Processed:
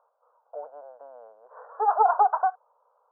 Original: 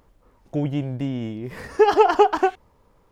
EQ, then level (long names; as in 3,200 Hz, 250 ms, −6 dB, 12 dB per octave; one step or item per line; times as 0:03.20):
Chebyshev band-pass filter 460–1,500 Hz, order 4
phaser with its sweep stopped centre 860 Hz, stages 4
0.0 dB